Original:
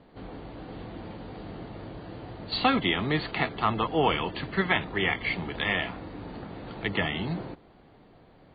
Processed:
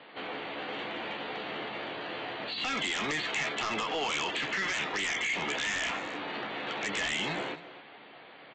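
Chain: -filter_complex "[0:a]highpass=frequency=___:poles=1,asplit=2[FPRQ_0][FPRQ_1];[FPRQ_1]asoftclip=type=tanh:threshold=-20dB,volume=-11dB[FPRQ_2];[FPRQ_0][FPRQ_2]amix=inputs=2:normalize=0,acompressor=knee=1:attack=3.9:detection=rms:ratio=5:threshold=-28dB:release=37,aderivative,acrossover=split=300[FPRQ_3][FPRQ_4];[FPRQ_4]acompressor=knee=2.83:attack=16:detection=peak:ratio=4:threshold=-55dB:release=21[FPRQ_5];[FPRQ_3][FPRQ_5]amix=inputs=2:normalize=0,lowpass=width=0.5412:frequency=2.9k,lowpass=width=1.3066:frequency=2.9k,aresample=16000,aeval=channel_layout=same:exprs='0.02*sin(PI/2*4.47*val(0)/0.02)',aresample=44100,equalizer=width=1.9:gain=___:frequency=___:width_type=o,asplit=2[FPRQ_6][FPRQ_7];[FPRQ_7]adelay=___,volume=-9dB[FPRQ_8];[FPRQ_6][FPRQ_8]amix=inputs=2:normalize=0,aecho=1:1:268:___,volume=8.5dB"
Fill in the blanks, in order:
190, -3, 1.2k, 14, 0.158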